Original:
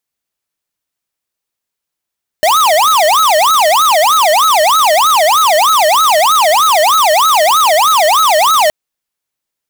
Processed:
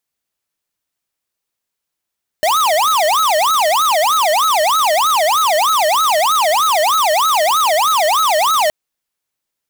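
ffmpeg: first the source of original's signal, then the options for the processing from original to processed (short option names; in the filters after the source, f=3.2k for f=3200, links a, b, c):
-f lavfi -i "aevalsrc='0.355*(2*lt(mod((951.5*t-348.5/(2*PI*3.2)*sin(2*PI*3.2*t)),1),0.5)-1)':d=6.27:s=44100"
-af "alimiter=limit=-13.5dB:level=0:latency=1:release=26"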